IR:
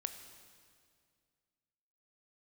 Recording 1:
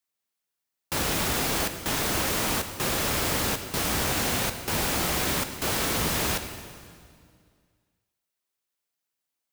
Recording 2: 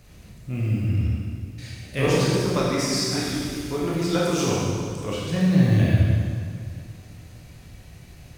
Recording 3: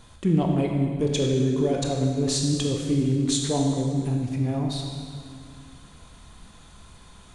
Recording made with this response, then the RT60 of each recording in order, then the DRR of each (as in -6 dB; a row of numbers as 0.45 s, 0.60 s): 1; 2.1 s, 2.1 s, 2.1 s; 7.5 dB, -5.5 dB, 0.5 dB